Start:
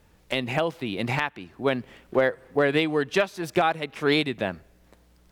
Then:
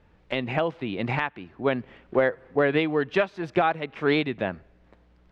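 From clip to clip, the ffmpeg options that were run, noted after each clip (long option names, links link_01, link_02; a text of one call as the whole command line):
ffmpeg -i in.wav -af "lowpass=2800" out.wav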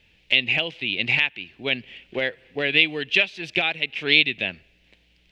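ffmpeg -i in.wav -af "highshelf=frequency=1800:width_type=q:width=3:gain=14,volume=-5dB" out.wav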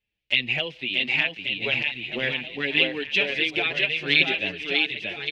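ffmpeg -i in.wav -filter_complex "[0:a]agate=range=-21dB:threshold=-53dB:ratio=16:detection=peak,asplit=2[link_01][link_02];[link_02]aecho=0:1:630|1134|1537|1860|2118:0.631|0.398|0.251|0.158|0.1[link_03];[link_01][link_03]amix=inputs=2:normalize=0,asplit=2[link_04][link_05];[link_05]adelay=6.8,afreqshift=0.62[link_06];[link_04][link_06]amix=inputs=2:normalize=1" out.wav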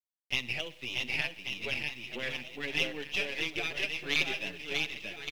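ffmpeg -i in.wav -af "aeval=exprs='if(lt(val(0),0),0.447*val(0),val(0))':channel_layout=same,acrusher=bits=8:mix=0:aa=0.5,aecho=1:1:63|126|189|252:0.106|0.0583|0.032|0.0176,volume=-7dB" out.wav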